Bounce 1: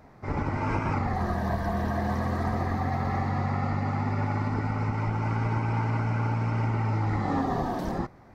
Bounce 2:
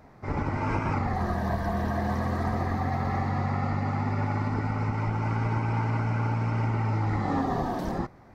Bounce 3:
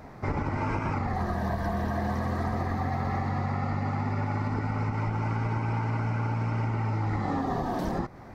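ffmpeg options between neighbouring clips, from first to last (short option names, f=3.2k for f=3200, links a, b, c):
-af anull
-af "acompressor=threshold=-33dB:ratio=6,volume=7dB"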